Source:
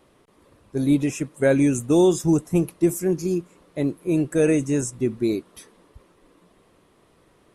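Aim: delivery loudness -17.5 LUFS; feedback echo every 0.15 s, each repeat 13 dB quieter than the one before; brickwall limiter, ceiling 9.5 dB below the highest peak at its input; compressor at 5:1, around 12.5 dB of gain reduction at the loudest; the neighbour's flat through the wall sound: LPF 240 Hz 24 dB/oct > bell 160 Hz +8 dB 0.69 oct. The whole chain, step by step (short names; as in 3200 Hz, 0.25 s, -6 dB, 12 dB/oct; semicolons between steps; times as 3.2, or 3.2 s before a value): compressor 5:1, threshold -28 dBFS; limiter -27 dBFS; LPF 240 Hz 24 dB/oct; bell 160 Hz +8 dB 0.69 oct; feedback echo 0.15 s, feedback 22%, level -13 dB; gain +19 dB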